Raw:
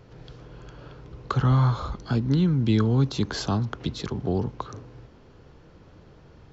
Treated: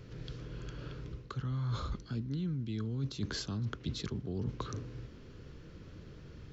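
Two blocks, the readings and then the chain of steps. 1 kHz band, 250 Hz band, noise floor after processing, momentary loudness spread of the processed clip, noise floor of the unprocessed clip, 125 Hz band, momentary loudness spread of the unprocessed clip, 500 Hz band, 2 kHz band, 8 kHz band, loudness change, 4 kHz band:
-15.5 dB, -13.5 dB, -52 dBFS, 15 LU, -52 dBFS, -12.5 dB, 17 LU, -14.0 dB, -10.5 dB, n/a, -14.0 dB, -8.0 dB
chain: bell 800 Hz -13 dB 1 oct; reverse; compressor 16:1, threshold -34 dBFS, peak gain reduction 18.5 dB; reverse; gain +1.5 dB

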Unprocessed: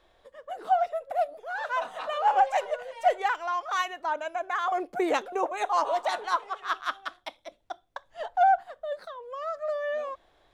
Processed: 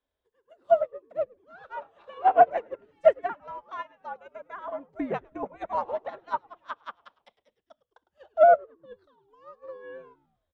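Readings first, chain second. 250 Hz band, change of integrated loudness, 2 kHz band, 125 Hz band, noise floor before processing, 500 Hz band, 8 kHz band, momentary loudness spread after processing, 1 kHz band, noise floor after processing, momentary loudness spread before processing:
-1.5 dB, +2.5 dB, -6.5 dB, n/a, -65 dBFS, +4.5 dB, under -25 dB, 22 LU, -2.0 dB, -84 dBFS, 16 LU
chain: frequency shift -83 Hz; treble ducked by the level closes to 1800 Hz, closed at -25 dBFS; frequency-shifting echo 0.105 s, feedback 51%, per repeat -120 Hz, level -12 dB; upward expander 2.5:1, over -37 dBFS; gain +6.5 dB

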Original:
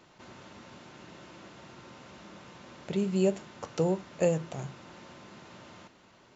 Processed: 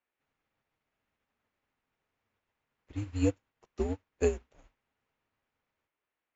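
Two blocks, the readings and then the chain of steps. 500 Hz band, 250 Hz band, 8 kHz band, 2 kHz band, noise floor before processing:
-4.5 dB, -4.0 dB, n/a, -4.5 dB, -60 dBFS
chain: frequency shift -100 Hz; band noise 250–2600 Hz -50 dBFS; upward expander 2.5:1, over -49 dBFS

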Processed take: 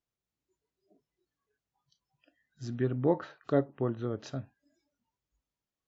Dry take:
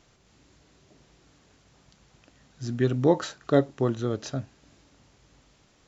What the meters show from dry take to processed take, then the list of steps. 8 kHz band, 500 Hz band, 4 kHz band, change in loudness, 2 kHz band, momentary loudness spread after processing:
n/a, -6.0 dB, -12.5 dB, -6.0 dB, -8.0 dB, 12 LU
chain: treble ducked by the level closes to 1900 Hz, closed at -22.5 dBFS; spectral noise reduction 26 dB; gain -6 dB

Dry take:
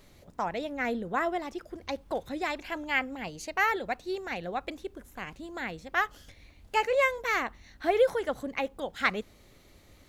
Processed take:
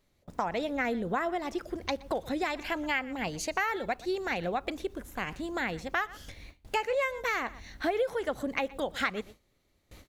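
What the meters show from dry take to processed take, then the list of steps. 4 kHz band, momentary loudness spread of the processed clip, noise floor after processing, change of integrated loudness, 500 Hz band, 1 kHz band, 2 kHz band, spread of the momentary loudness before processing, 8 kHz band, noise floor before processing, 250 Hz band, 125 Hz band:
+0.5 dB, 8 LU, -72 dBFS, -1.5 dB, -1.5 dB, -1.5 dB, -2.0 dB, 14 LU, +3.0 dB, -58 dBFS, +2.0 dB, +3.5 dB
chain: on a send: echo 0.12 s -22.5 dB; on the sum: compressor 4:1, threshold -34 dBFS, peak gain reduction 13.5 dB; gate with hold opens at -44 dBFS; gain +6 dB

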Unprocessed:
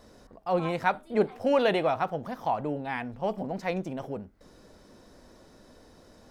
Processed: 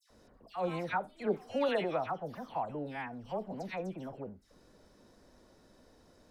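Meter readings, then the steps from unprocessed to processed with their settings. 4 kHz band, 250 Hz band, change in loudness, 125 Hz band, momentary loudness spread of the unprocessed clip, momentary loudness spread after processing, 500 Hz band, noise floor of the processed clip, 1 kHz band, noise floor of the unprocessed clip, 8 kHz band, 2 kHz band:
-7.5 dB, -7.5 dB, -7.5 dB, -7.5 dB, 11 LU, 12 LU, -7.5 dB, -64 dBFS, -7.5 dB, -56 dBFS, n/a, -7.5 dB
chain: dispersion lows, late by 0.104 s, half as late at 2000 Hz; gain -7.5 dB

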